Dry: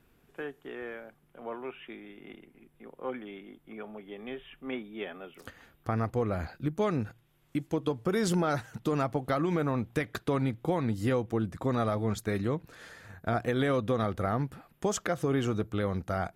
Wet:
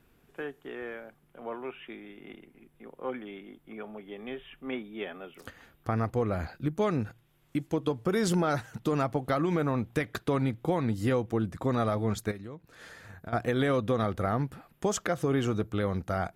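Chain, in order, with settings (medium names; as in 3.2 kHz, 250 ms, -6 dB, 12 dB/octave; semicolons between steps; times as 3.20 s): 12.31–13.33 s: compression 4:1, threshold -43 dBFS, peak gain reduction 14.5 dB; trim +1 dB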